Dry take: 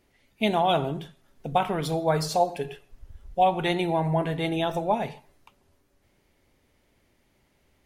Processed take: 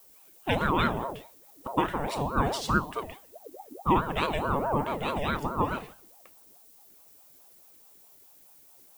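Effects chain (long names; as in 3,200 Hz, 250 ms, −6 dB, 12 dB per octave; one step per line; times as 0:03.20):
change of speed 0.875×
background noise violet −53 dBFS
ring modulator whose carrier an LFO sweeps 550 Hz, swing 50%, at 4.7 Hz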